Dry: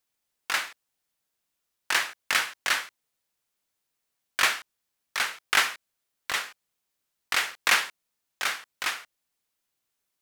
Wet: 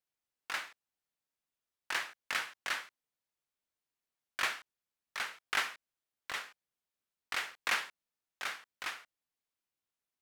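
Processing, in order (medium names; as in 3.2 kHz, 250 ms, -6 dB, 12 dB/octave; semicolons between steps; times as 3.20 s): treble shelf 4.5 kHz -6 dB; trim -9 dB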